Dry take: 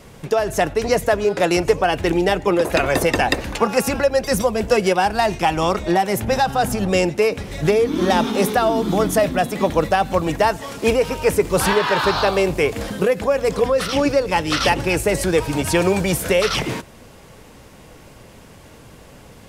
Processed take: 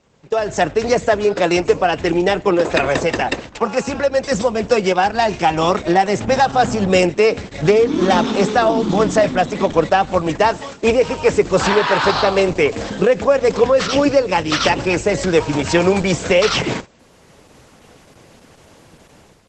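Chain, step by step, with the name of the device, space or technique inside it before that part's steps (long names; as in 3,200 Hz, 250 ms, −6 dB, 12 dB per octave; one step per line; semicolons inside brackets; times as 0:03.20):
video call (high-pass filter 110 Hz 6 dB per octave; automatic gain control gain up to 12 dB; noise gate −26 dBFS, range −11 dB; level −1 dB; Opus 12 kbit/s 48,000 Hz)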